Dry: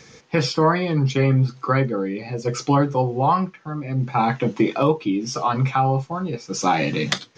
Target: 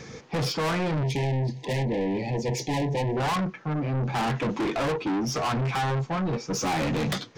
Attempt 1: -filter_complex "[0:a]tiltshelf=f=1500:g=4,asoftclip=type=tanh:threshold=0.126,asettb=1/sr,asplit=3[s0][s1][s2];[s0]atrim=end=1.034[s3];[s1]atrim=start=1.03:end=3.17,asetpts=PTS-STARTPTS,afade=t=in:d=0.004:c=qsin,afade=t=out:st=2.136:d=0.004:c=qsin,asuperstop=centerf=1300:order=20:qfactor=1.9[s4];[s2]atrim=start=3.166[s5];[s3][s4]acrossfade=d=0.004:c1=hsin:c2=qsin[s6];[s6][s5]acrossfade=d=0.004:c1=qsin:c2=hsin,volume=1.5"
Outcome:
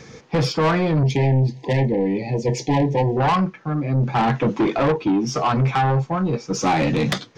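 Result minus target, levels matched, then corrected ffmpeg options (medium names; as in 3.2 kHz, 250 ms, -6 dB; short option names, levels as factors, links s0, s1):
saturation: distortion -5 dB
-filter_complex "[0:a]tiltshelf=f=1500:g=4,asoftclip=type=tanh:threshold=0.0398,asettb=1/sr,asplit=3[s0][s1][s2];[s0]atrim=end=1.034[s3];[s1]atrim=start=1.03:end=3.17,asetpts=PTS-STARTPTS,afade=t=in:d=0.004:c=qsin,afade=t=out:st=2.136:d=0.004:c=qsin,asuperstop=centerf=1300:order=20:qfactor=1.9[s4];[s2]atrim=start=3.166[s5];[s3][s4]acrossfade=d=0.004:c1=hsin:c2=qsin[s6];[s6][s5]acrossfade=d=0.004:c1=qsin:c2=hsin,volume=1.5"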